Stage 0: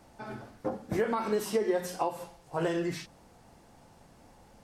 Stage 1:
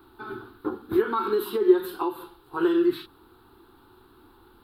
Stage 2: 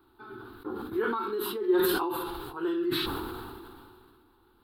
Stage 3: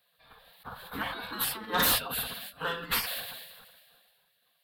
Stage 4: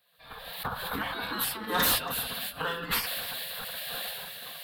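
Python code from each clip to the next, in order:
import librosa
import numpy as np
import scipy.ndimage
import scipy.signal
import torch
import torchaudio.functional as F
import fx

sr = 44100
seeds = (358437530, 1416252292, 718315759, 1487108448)

y1 = fx.curve_eq(x, sr, hz=(110.0, 170.0, 370.0, 590.0, 910.0, 1400.0, 2000.0, 3900.0, 6000.0, 14000.0), db=(0, -12, 14, -18, 3, 11, -8, 9, -24, 12))
y2 = fx.sustainer(y1, sr, db_per_s=26.0)
y2 = y2 * librosa.db_to_amplitude(-9.0)
y3 = fx.spec_gate(y2, sr, threshold_db=-20, keep='weak')
y3 = fx.fold_sine(y3, sr, drive_db=11, ceiling_db=-20.0)
y3 = fx.upward_expand(y3, sr, threshold_db=-45.0, expansion=1.5)
y4 = fx.recorder_agc(y3, sr, target_db=-24.5, rise_db_per_s=33.0, max_gain_db=30)
y4 = y4 + 10.0 ** (-17.0 / 20.0) * np.pad(y4, (int(279 * sr / 1000.0), 0))[:len(y4)]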